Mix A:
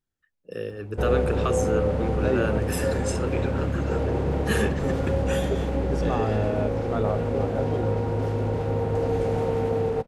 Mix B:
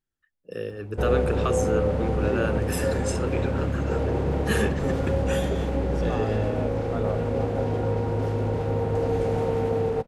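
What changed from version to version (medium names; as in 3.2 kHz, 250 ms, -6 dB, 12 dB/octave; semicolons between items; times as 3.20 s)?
second voice -5.0 dB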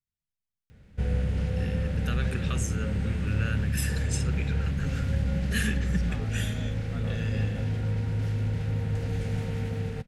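first voice: entry +1.05 s; master: add high-order bell 580 Hz -15.5 dB 2.4 oct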